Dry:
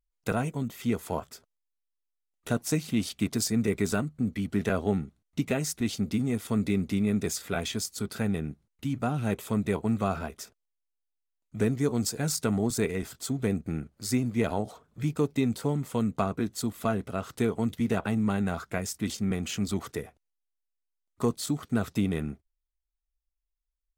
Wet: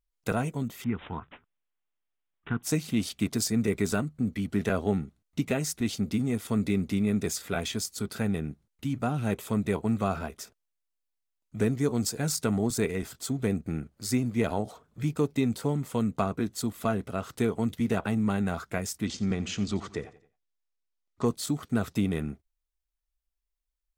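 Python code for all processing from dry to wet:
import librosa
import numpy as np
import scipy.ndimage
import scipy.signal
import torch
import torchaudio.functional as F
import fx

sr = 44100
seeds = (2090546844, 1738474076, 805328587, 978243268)

y = fx.chain(x, sr, fx.fixed_phaser(hz=1400.0, stages=4),
    fx.resample_bad(factor=6, down='none', up='filtered'), at=(0.84, 2.63))
y = fx.chain(y, sr, fx.lowpass(hz=6900.0, slope=24),
    fx.echo_feedback(ms=88, feedback_pct=41, wet_db=-17.5), at=(19.05, 21.26))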